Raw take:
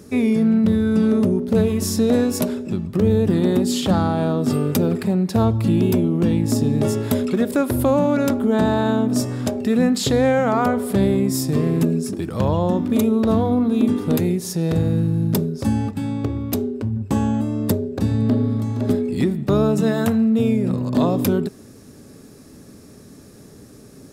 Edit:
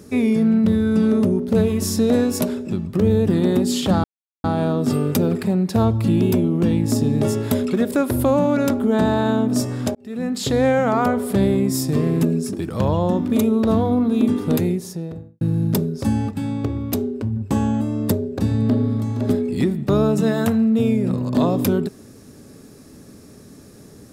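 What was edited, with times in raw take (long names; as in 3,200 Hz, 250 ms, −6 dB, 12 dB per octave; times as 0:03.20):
0:04.04: splice in silence 0.40 s
0:09.55–0:10.24: fade in
0:14.16–0:15.01: fade out and dull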